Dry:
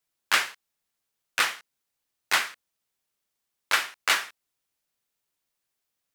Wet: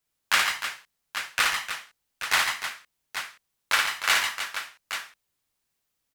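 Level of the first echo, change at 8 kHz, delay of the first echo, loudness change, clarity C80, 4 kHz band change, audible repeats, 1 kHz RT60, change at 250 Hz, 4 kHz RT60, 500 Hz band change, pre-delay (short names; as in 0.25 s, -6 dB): -3.5 dB, +3.0 dB, 56 ms, -0.5 dB, none, +3.0 dB, 4, none, 0.0 dB, none, 0.0 dB, none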